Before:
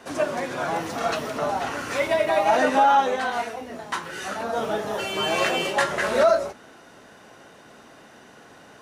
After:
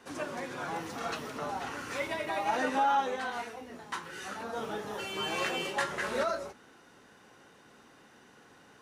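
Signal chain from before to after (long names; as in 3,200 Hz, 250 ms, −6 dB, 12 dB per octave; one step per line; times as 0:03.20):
parametric band 640 Hz −9.5 dB 0.24 octaves
level −8.5 dB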